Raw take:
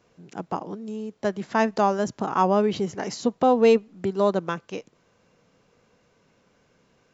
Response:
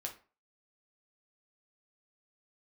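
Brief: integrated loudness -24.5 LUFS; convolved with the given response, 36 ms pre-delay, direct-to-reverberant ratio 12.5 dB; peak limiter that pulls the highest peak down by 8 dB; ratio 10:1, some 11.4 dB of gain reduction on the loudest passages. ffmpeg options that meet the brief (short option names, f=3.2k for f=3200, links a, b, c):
-filter_complex "[0:a]acompressor=threshold=-24dB:ratio=10,alimiter=limit=-20dB:level=0:latency=1,asplit=2[a][b];[1:a]atrim=start_sample=2205,adelay=36[c];[b][c]afir=irnorm=-1:irlink=0,volume=-11dB[d];[a][d]amix=inputs=2:normalize=0,volume=8dB"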